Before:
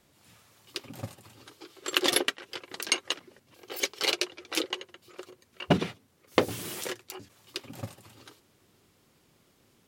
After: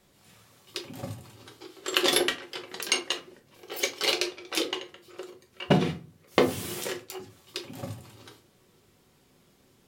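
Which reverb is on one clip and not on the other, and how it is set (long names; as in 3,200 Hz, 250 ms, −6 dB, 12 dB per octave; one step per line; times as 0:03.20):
rectangular room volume 160 cubic metres, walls furnished, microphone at 1.1 metres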